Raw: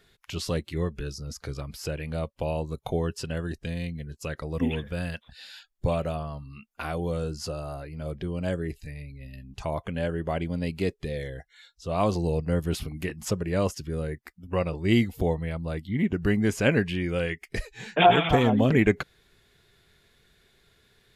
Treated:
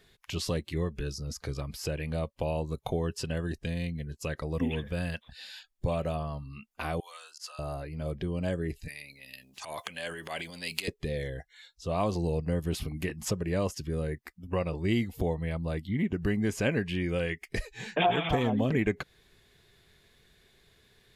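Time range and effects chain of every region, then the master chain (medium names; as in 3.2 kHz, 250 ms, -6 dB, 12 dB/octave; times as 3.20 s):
7.00–7.59 s: high-pass 1.1 kHz 24 dB/octave + slow attack 105 ms
8.88–10.88 s: transient shaper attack -11 dB, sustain +10 dB + high-pass 1.3 kHz 6 dB/octave + treble shelf 2 kHz +10 dB
whole clip: band-stop 1.4 kHz, Q 12; compression 2:1, threshold -28 dBFS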